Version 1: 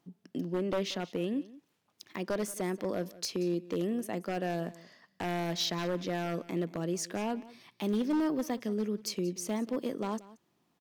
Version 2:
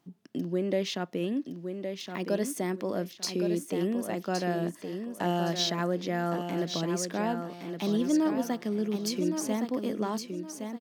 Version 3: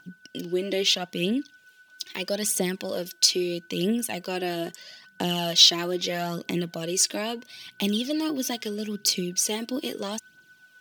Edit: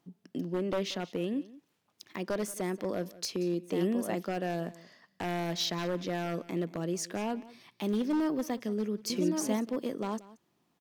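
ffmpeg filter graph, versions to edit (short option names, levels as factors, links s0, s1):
-filter_complex "[1:a]asplit=2[s0][s1];[0:a]asplit=3[s2][s3][s4];[s2]atrim=end=3.79[s5];[s0]atrim=start=3.63:end=4.34[s6];[s3]atrim=start=4.18:end=9.102[s7];[s1]atrim=start=9.098:end=9.612[s8];[s4]atrim=start=9.608[s9];[s5][s6]acrossfade=d=0.16:c1=tri:c2=tri[s10];[s10][s7]acrossfade=d=0.16:c1=tri:c2=tri[s11];[s11][s8]acrossfade=d=0.004:c1=hsin:c2=hsin[s12];[s12][s9]acrossfade=d=0.004:c1=hsin:c2=hsin"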